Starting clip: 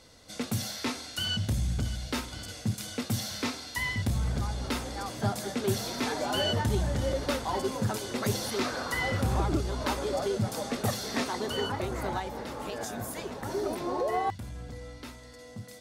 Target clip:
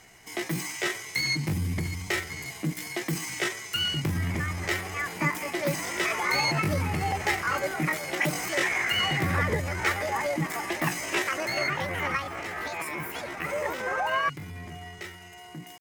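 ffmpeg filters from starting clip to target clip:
ffmpeg -i in.wav -af "equalizer=frequency=1400:width=2.1:gain=13.5,asetrate=64194,aresample=44100,atempo=0.686977" out.wav

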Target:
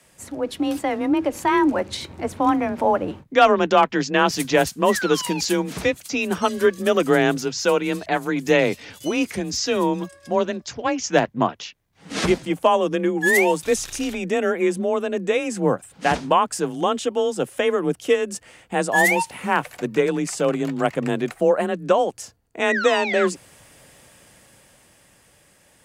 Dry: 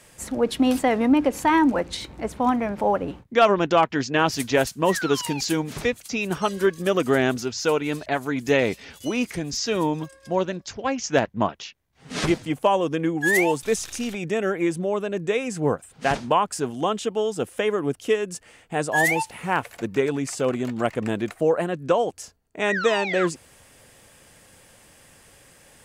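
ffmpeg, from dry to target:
ffmpeg -i in.wav -af "dynaudnorm=framelen=100:gausssize=31:maxgain=11.5dB,afreqshift=26,volume=-4dB" out.wav

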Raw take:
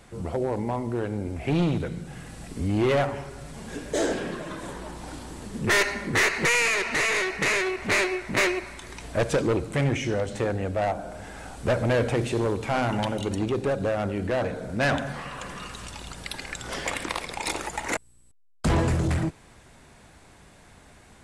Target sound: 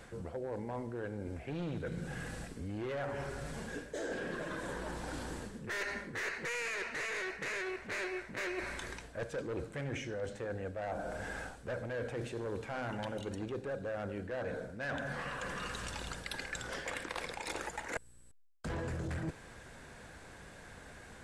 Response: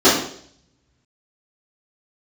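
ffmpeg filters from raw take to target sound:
-af "equalizer=frequency=500:width_type=o:width=0.33:gain=6,equalizer=frequency=1600:width_type=o:width=0.33:gain=8,equalizer=frequency=10000:width_type=o:width=0.33:gain=-3,areverse,acompressor=threshold=-35dB:ratio=10,areverse,volume=-1.5dB"

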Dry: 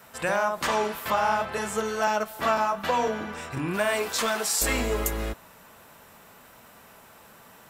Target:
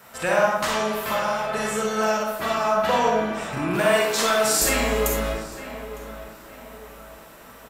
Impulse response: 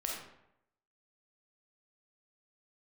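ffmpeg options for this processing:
-filter_complex "[0:a]asettb=1/sr,asplit=3[link_01][link_02][link_03];[link_01]atrim=end=0.474[link_04];[link_02]atrim=start=0.47:end=2.65,asetpts=PTS-STARTPTS,afade=type=in:duration=0.004:curve=qsin,afade=type=out:start_time=2.176:duration=0.004:curve=qsin,acrossover=split=230|3000[link_05][link_06][link_07];[link_06]acompressor=threshold=-27dB:ratio=6[link_08];[link_05][link_08][link_07]amix=inputs=3:normalize=0[link_09];[link_03]atrim=start=2.646[link_10];[link_04][link_09]acrossfade=duration=0.004:curve1=hsin:curve2=qsin[link_11];[link_11][link_10]acrossfade=duration=0.004:curve1=qsin:curve2=hsin,asplit=2[link_12][link_13];[link_13]adelay=907,lowpass=frequency=2400:poles=1,volume=-13dB,asplit=2[link_14][link_15];[link_15]adelay=907,lowpass=frequency=2400:poles=1,volume=0.41,asplit=2[link_16][link_17];[link_17]adelay=907,lowpass=frequency=2400:poles=1,volume=0.41,asplit=2[link_18][link_19];[link_19]adelay=907,lowpass=frequency=2400:poles=1,volume=0.41[link_20];[link_12][link_14][link_16][link_18][link_20]amix=inputs=5:normalize=0[link_21];[1:a]atrim=start_sample=2205[link_22];[link_21][link_22]afir=irnorm=-1:irlink=0,volume=3dB"

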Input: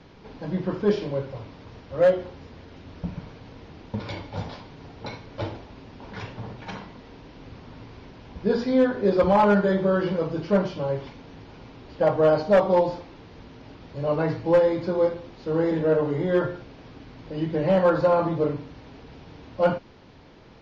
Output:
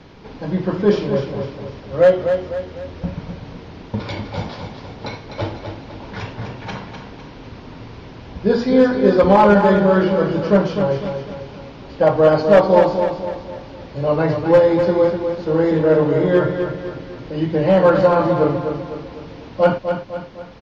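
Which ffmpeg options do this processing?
ffmpeg -i in.wav -af "aecho=1:1:252|504|756|1008|1260:0.447|0.201|0.0905|0.0407|0.0183,volume=6.5dB" out.wav

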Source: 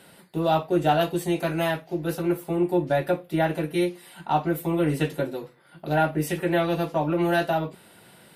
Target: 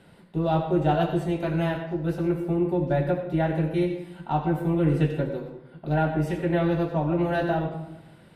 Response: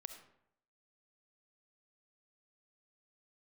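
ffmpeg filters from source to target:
-filter_complex "[0:a]aemphasis=mode=reproduction:type=bsi[link_01];[1:a]atrim=start_sample=2205,asetrate=34839,aresample=44100[link_02];[link_01][link_02]afir=irnorm=-1:irlink=0"

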